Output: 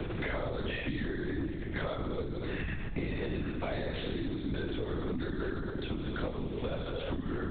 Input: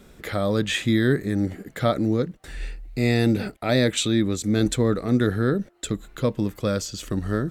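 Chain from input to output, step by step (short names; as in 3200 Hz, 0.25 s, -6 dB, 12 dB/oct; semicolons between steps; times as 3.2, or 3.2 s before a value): on a send: tape echo 0.158 s, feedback 45%, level -16 dB; on the sum: non-linear reverb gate 0.37 s falling, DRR -0.5 dB; backlash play -45.5 dBFS; compressor 4:1, threshold -35 dBFS, peak gain reduction 19 dB; one-sided clip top -28 dBFS; LPC vocoder at 8 kHz whisper; three-band squash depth 100%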